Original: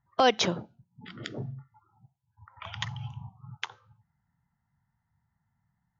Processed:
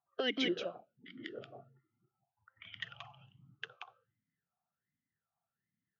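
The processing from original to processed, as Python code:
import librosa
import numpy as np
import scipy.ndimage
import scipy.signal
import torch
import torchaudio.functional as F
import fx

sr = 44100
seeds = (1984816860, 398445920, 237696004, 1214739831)

p1 = x + fx.echo_single(x, sr, ms=180, db=-3.0, dry=0)
p2 = fx.vowel_sweep(p1, sr, vowels='a-i', hz=1.3)
y = p2 * librosa.db_to_amplitude(3.5)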